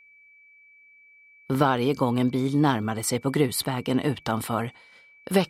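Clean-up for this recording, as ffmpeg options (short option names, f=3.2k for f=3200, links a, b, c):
-af "bandreject=f=2.3k:w=30"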